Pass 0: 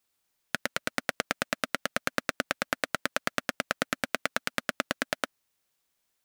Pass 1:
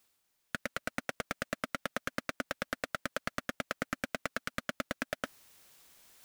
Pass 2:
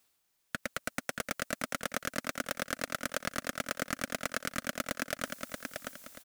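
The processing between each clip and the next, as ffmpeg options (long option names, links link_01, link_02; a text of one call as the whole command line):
ffmpeg -i in.wav -af "areverse,acompressor=mode=upward:threshold=-45dB:ratio=2.5,areverse,asoftclip=type=tanh:threshold=-21dB" out.wav
ffmpeg -i in.wav -filter_complex "[0:a]acrossover=split=760|5500[link_01][link_02][link_03];[link_03]dynaudnorm=framelen=460:gausssize=3:maxgain=8.5dB[link_04];[link_01][link_02][link_04]amix=inputs=3:normalize=0,aecho=1:1:631|1262|1893|2524:0.562|0.18|0.0576|0.0184" out.wav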